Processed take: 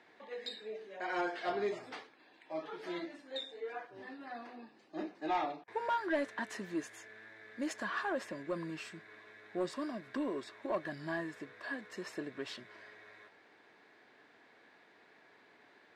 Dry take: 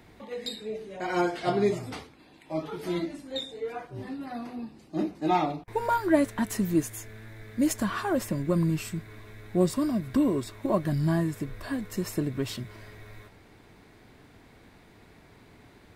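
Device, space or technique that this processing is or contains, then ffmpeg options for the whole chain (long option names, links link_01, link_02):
intercom: -af "highpass=420,lowpass=4700,equalizer=frequency=1700:width_type=o:width=0.2:gain=8.5,asoftclip=type=tanh:threshold=-20dB,volume=-5.5dB"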